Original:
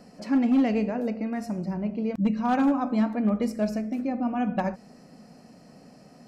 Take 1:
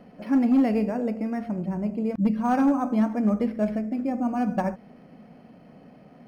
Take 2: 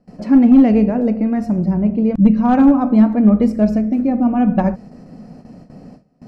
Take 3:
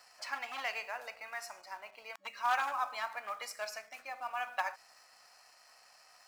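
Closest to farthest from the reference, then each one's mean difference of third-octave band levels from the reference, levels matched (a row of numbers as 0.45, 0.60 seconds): 1, 2, 3; 2.0, 4.5, 14.5 decibels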